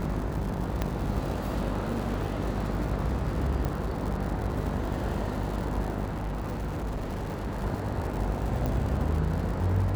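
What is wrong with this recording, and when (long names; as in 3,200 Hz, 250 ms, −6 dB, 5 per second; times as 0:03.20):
mains buzz 50 Hz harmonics 21 −33 dBFS
surface crackle 150 per second −34 dBFS
0:00.82: click −14 dBFS
0:03.65: click −18 dBFS
0:06.04–0:07.64: clipping −28.5 dBFS
0:08.66: click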